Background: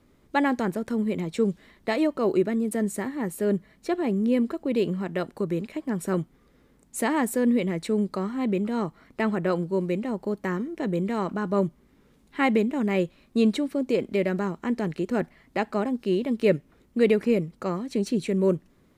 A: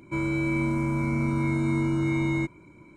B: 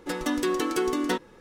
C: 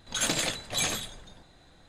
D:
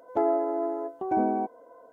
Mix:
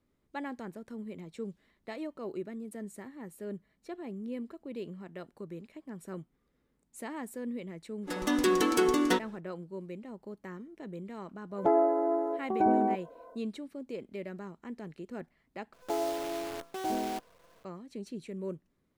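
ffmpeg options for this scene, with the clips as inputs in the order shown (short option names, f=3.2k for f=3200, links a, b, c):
-filter_complex "[4:a]asplit=2[a][b];[0:a]volume=-15.5dB[c];[2:a]dynaudnorm=f=110:g=5:m=6.5dB[d];[b]acrusher=bits=6:dc=4:mix=0:aa=0.000001[e];[c]asplit=2[f][g];[f]atrim=end=15.734[h];[e]atrim=end=1.92,asetpts=PTS-STARTPTS,volume=-7.5dB[i];[g]atrim=start=17.646[j];[d]atrim=end=1.4,asetpts=PTS-STARTPTS,volume=-6dB,afade=t=in:d=0.05,afade=t=out:st=1.35:d=0.05,adelay=8010[k];[a]atrim=end=1.92,asetpts=PTS-STARTPTS,afade=t=in:d=0.1,afade=t=out:st=1.82:d=0.1,adelay=11490[l];[h][i]acrossfade=d=0.004:c1=hsin:c2=hsin[m];[m][j]acrossfade=d=0.004:c1=hsin:c2=hsin[n];[n][k][l]amix=inputs=3:normalize=0"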